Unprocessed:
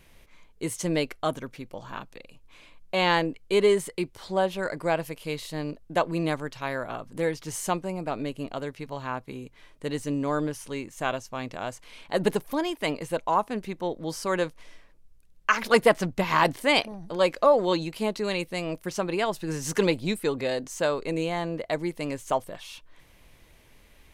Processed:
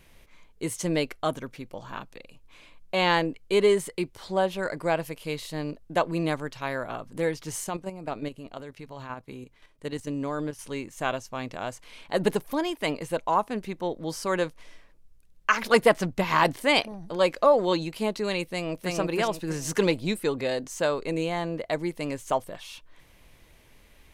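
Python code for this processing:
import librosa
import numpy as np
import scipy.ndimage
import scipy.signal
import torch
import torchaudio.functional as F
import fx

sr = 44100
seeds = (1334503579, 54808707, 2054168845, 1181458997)

y = fx.level_steps(x, sr, step_db=10, at=(7.64, 10.59))
y = fx.echo_throw(y, sr, start_s=18.46, length_s=0.49, ms=320, feedback_pct=35, wet_db=-1.0)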